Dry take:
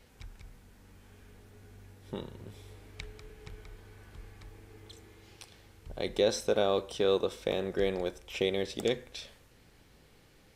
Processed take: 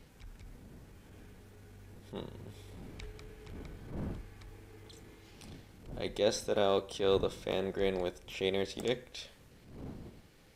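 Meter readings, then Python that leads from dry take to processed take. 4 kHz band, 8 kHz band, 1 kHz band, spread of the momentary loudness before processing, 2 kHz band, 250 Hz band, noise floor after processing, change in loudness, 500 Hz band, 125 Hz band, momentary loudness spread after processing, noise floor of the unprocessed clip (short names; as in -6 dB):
-2.5 dB, -2.0 dB, -1.0 dB, 22 LU, -2.5 dB, -1.5 dB, -59 dBFS, -3.0 dB, -2.5 dB, +0.5 dB, 23 LU, -60 dBFS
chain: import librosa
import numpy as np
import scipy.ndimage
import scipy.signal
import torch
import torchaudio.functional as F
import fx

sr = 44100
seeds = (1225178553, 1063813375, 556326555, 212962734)

y = fx.dmg_wind(x, sr, seeds[0], corner_hz=230.0, level_db=-49.0)
y = fx.transient(y, sr, attack_db=-8, sustain_db=-2)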